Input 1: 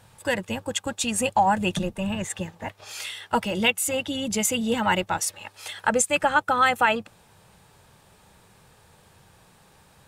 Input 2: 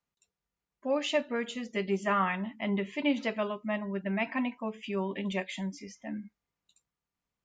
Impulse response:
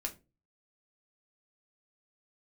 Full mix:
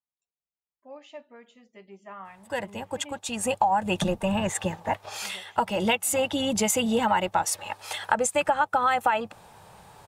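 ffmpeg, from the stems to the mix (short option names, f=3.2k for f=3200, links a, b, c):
-filter_complex "[0:a]dynaudnorm=f=180:g=7:m=5.5dB,adelay=2250,volume=-3.5dB[a];[1:a]volume=-19.5dB,asplit=3[b][c][d];[b]atrim=end=3.19,asetpts=PTS-STARTPTS,afade=t=out:st=3.186:d=0.004:c=hsin[e];[c]atrim=start=3.19:end=5.22,asetpts=PTS-STARTPTS,volume=0[f];[d]atrim=start=5.22,asetpts=PTS-STARTPTS,afade=t=in:d=0.004:c=hsin[g];[e][f][g]concat=n=3:v=0:a=1,asplit=2[h][i];[i]apad=whole_len=543381[j];[a][j]sidechaincompress=threshold=-52dB:ratio=10:attack=31:release=1020[k];[k][h]amix=inputs=2:normalize=0,equalizer=f=810:t=o:w=1.2:g=8.5,acompressor=threshold=-20dB:ratio=6"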